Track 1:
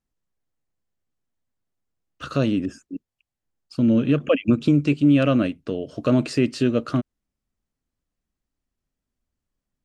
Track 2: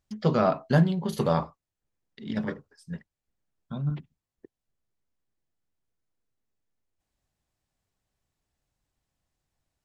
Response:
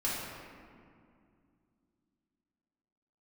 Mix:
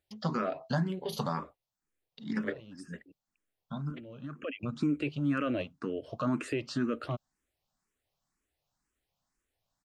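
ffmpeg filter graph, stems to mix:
-filter_complex "[0:a]equalizer=f=1.2k:w=0.87:g=9.5,alimiter=limit=-11.5dB:level=0:latency=1:release=49,adelay=150,volume=-7dB[a];[1:a]lowshelf=f=170:g=-10.5,acompressor=threshold=-27dB:ratio=4,volume=2.5dB,asplit=2[b][c];[c]apad=whole_len=440647[d];[a][d]sidechaincompress=threshold=-48dB:ratio=10:attack=22:release=535[e];[e][b]amix=inputs=2:normalize=0,asplit=2[f][g];[g]afreqshift=2[h];[f][h]amix=inputs=2:normalize=1"

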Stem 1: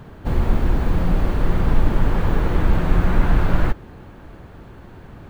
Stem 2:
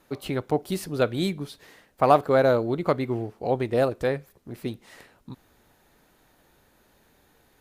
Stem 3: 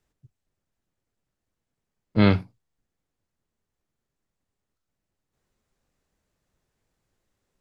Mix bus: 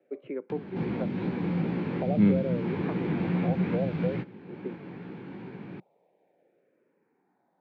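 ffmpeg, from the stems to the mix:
-filter_complex "[0:a]flanger=delay=15.5:depth=6:speed=2.4,acompressor=mode=upward:threshold=-28dB:ratio=2.5,adelay=500,volume=-7.5dB[a];[1:a]bandpass=f=620:t=q:w=3.8:csg=0,asplit=2[b][c];[c]afreqshift=-0.46[d];[b][d]amix=inputs=2:normalize=1,volume=2.5dB[e];[2:a]lowpass=1.5k,volume=-7.5dB[f];[a][e][f]amix=inputs=3:normalize=0,equalizer=f=340:t=o:w=2.5:g=7.5,acrossover=split=260|3000[g][h][i];[h]acompressor=threshold=-30dB:ratio=3[j];[g][j][i]amix=inputs=3:normalize=0,highpass=f=130:w=0.5412,highpass=f=130:w=1.3066,equalizer=f=180:t=q:w=4:g=6,equalizer=f=630:t=q:w=4:g=-9,equalizer=f=1.2k:t=q:w=4:g=-5,equalizer=f=2.3k:t=q:w=4:g=9,lowpass=f=4.4k:w=0.5412,lowpass=f=4.4k:w=1.3066"

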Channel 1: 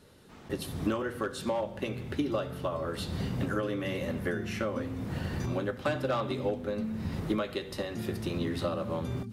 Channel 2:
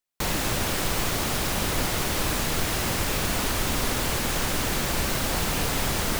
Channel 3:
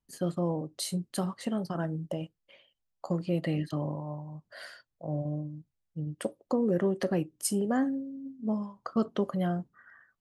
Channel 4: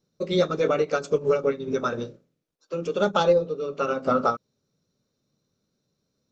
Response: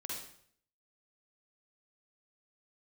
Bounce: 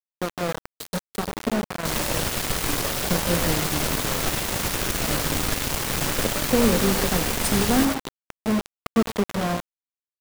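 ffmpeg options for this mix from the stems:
-filter_complex "[0:a]adelay=500,volume=-2.5dB,asplit=3[a][b][c];[b]volume=-14dB[d];[c]volume=-19dB[e];[1:a]adelay=1650,volume=0.5dB,asplit=2[f][g];[g]volume=-6dB[h];[2:a]highshelf=f=4.5k:g=-2.5,aecho=1:1:4.3:0.54,volume=2.5dB,asplit=3[i][j][k];[j]volume=-9dB[l];[k]volume=-15dB[m];[3:a]deesser=0.95,flanger=delay=2.5:depth=9.6:regen=-31:speed=1.8:shape=triangular,volume=-10dB,asplit=2[n][o];[o]volume=-17dB[p];[4:a]atrim=start_sample=2205[q];[d][l]amix=inputs=2:normalize=0[r];[r][q]afir=irnorm=-1:irlink=0[s];[e][h][m][p]amix=inputs=4:normalize=0,aecho=0:1:97:1[t];[a][f][i][n][s][t]amix=inputs=6:normalize=0,aeval=exprs='val(0)+0.00224*(sin(2*PI*60*n/s)+sin(2*PI*2*60*n/s)/2+sin(2*PI*3*60*n/s)/3+sin(2*PI*4*60*n/s)/4+sin(2*PI*5*60*n/s)/5)':c=same,aeval=exprs='val(0)*gte(abs(val(0)),0.0841)':c=same"

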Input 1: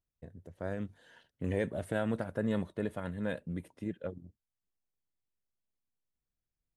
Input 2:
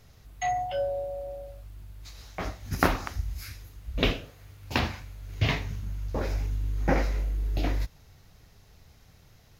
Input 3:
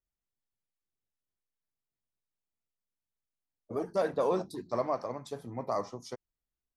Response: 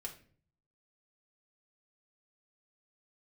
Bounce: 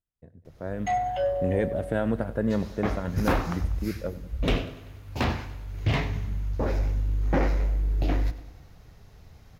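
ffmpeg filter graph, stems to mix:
-filter_complex "[0:a]volume=-2dB,asplit=2[a][b];[b]volume=-18dB[c];[1:a]asoftclip=type=tanh:threshold=-21.5dB,adelay=450,volume=-3.5dB,asplit=2[d][e];[e]volume=-15.5dB[f];[c][f]amix=inputs=2:normalize=0,aecho=0:1:97|194|291|388|485|582|679|776:1|0.54|0.292|0.157|0.085|0.0459|0.0248|0.0134[g];[a][d][g]amix=inputs=3:normalize=0,highshelf=f=2.3k:g=-8.5,dynaudnorm=f=180:g=7:m=8.5dB"

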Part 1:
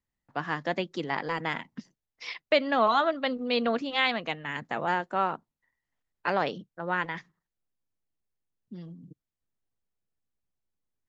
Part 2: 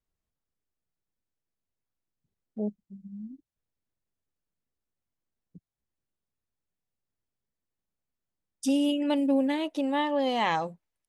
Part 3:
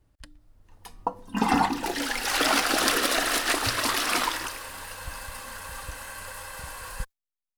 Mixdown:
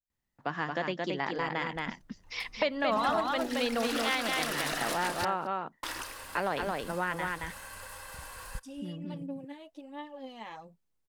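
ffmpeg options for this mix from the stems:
-filter_complex "[0:a]adelay=100,volume=1.5dB,asplit=2[a][b];[b]volume=-4dB[c];[1:a]aphaser=in_gain=1:out_gain=1:delay=4.9:decay=0.48:speed=1.4:type=sinusoidal,volume=-19dB[d];[2:a]adelay=1550,volume=-6dB,asplit=3[e][f][g];[e]atrim=end=5.25,asetpts=PTS-STARTPTS,afade=t=out:st=5.246:d=0.004:c=hsin[h];[f]atrim=start=5.25:end=5.83,asetpts=PTS-STARTPTS,volume=0[i];[g]atrim=start=5.83,asetpts=PTS-STARTPTS,afade=t=in:d=0.004:c=hsin[j];[h][i][j]concat=n=3:v=0:a=1,asplit=2[k][l];[l]volume=-24dB[m];[c][m]amix=inputs=2:normalize=0,aecho=0:1:223:1[n];[a][d][k][n]amix=inputs=4:normalize=0,acompressor=threshold=-31dB:ratio=2"

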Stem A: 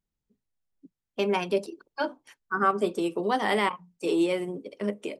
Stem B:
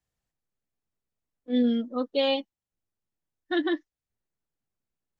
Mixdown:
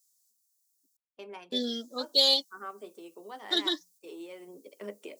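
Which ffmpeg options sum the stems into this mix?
-filter_complex "[0:a]volume=-8dB,afade=t=in:st=4.35:d=0.32:silence=0.334965[a];[1:a]aexciter=amount=15.1:drive=9.9:freq=4.2k,volume=-5.5dB,asplit=3[b][c][d];[b]atrim=end=0.97,asetpts=PTS-STARTPTS,afade=t=out:st=0.966:d=0.004:c=hsin[e];[c]atrim=start=0.97:end=1.52,asetpts=PTS-STARTPTS,volume=0[f];[d]atrim=start=1.52,asetpts=PTS-STARTPTS,afade=t=in:d=0.004:c=hsin[g];[e][f][g]concat=n=3:v=0:a=1[h];[a][h]amix=inputs=2:normalize=0,highpass=320,agate=range=-7dB:threshold=-58dB:ratio=16:detection=peak"

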